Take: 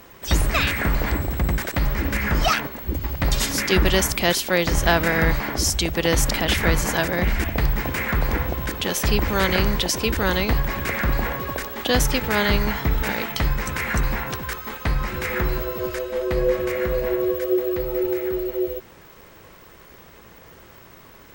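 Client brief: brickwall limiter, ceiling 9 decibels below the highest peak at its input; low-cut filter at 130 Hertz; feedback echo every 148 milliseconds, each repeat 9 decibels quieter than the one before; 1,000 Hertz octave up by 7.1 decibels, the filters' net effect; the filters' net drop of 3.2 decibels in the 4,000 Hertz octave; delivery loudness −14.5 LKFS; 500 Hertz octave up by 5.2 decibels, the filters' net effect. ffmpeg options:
ffmpeg -i in.wav -af "highpass=130,equalizer=frequency=500:width_type=o:gain=4.5,equalizer=frequency=1000:width_type=o:gain=8,equalizer=frequency=4000:width_type=o:gain=-5,alimiter=limit=-9.5dB:level=0:latency=1,aecho=1:1:148|296|444|592:0.355|0.124|0.0435|0.0152,volume=7dB" out.wav

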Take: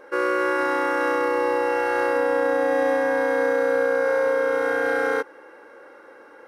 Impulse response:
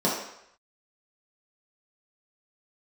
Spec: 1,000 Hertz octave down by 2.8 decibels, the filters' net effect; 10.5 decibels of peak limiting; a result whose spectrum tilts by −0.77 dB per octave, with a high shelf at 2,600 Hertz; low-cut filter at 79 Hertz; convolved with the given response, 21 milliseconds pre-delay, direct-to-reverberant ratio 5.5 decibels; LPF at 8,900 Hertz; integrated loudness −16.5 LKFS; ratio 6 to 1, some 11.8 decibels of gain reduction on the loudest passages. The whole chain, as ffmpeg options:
-filter_complex "[0:a]highpass=79,lowpass=8900,equalizer=frequency=1000:width_type=o:gain=-5,highshelf=frequency=2600:gain=7,acompressor=threshold=-32dB:ratio=6,alimiter=level_in=8dB:limit=-24dB:level=0:latency=1,volume=-8dB,asplit=2[link_01][link_02];[1:a]atrim=start_sample=2205,adelay=21[link_03];[link_02][link_03]afir=irnorm=-1:irlink=0,volume=-19.5dB[link_04];[link_01][link_04]amix=inputs=2:normalize=0,volume=22.5dB"

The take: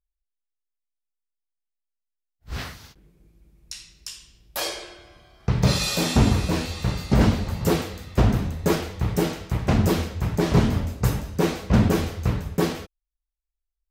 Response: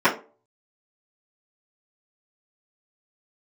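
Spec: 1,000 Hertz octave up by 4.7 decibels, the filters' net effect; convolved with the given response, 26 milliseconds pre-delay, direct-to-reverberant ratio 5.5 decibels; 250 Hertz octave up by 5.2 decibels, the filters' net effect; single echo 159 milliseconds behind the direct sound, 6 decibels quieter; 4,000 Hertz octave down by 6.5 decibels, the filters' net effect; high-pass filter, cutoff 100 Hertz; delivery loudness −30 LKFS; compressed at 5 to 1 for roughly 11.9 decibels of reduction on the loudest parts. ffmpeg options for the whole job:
-filter_complex "[0:a]highpass=100,equalizer=frequency=250:width_type=o:gain=7,equalizer=frequency=1000:width_type=o:gain=6,equalizer=frequency=4000:width_type=o:gain=-8.5,acompressor=threshold=-24dB:ratio=5,aecho=1:1:159:0.501,asplit=2[link_01][link_02];[1:a]atrim=start_sample=2205,adelay=26[link_03];[link_02][link_03]afir=irnorm=-1:irlink=0,volume=-26.5dB[link_04];[link_01][link_04]amix=inputs=2:normalize=0,volume=-2dB"

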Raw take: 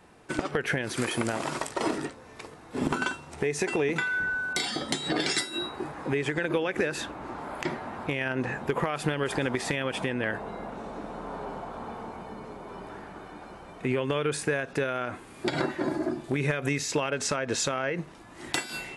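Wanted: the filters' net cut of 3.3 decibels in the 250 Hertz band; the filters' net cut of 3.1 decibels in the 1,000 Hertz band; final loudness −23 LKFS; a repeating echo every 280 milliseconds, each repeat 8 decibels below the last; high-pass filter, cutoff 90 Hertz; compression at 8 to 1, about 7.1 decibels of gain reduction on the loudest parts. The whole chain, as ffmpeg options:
ffmpeg -i in.wav -af "highpass=90,equalizer=frequency=250:width_type=o:gain=-4,equalizer=frequency=1000:width_type=o:gain=-4,acompressor=threshold=-32dB:ratio=8,aecho=1:1:280|560|840|1120|1400:0.398|0.159|0.0637|0.0255|0.0102,volume=14dB" out.wav

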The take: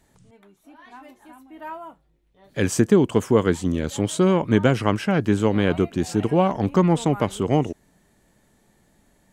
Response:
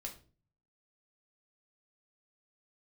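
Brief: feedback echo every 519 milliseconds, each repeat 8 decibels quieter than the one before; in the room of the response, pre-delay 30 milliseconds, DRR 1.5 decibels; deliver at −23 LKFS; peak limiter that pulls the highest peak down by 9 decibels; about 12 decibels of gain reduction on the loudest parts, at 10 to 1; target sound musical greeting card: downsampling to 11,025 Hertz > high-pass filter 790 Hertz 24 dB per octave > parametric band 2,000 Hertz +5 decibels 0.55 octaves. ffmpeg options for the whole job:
-filter_complex "[0:a]acompressor=threshold=-24dB:ratio=10,alimiter=limit=-21dB:level=0:latency=1,aecho=1:1:519|1038|1557|2076|2595:0.398|0.159|0.0637|0.0255|0.0102,asplit=2[link_01][link_02];[1:a]atrim=start_sample=2205,adelay=30[link_03];[link_02][link_03]afir=irnorm=-1:irlink=0,volume=1.5dB[link_04];[link_01][link_04]amix=inputs=2:normalize=0,aresample=11025,aresample=44100,highpass=frequency=790:width=0.5412,highpass=frequency=790:width=1.3066,equalizer=frequency=2000:width_type=o:width=0.55:gain=5,volume=16dB"

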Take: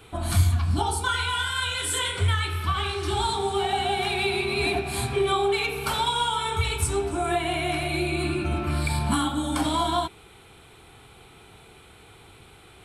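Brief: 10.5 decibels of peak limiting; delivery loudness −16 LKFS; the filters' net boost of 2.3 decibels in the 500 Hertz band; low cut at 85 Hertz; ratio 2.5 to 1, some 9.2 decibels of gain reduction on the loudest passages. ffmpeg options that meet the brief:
ffmpeg -i in.wav -af "highpass=85,equalizer=frequency=500:width_type=o:gain=3.5,acompressor=threshold=-32dB:ratio=2.5,volume=21.5dB,alimiter=limit=-8.5dB:level=0:latency=1" out.wav

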